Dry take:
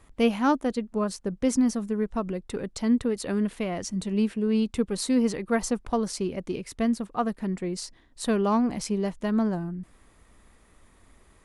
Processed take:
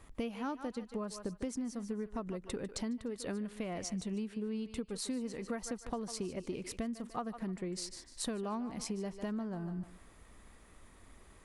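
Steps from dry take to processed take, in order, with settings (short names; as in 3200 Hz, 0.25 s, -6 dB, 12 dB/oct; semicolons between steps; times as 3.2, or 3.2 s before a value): thinning echo 0.149 s, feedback 33%, high-pass 570 Hz, level -12 dB; compressor 12:1, threshold -34 dBFS, peak gain reduction 17.5 dB; gain -1 dB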